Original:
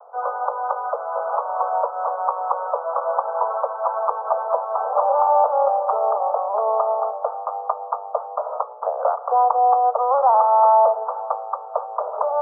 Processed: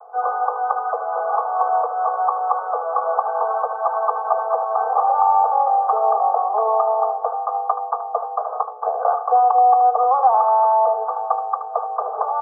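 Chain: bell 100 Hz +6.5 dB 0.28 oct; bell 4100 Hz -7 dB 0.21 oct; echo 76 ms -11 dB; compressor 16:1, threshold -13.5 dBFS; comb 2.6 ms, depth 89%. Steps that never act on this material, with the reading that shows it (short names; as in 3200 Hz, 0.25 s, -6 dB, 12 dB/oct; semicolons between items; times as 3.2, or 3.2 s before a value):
bell 100 Hz: input band starts at 400 Hz; bell 4100 Hz: input band ends at 1400 Hz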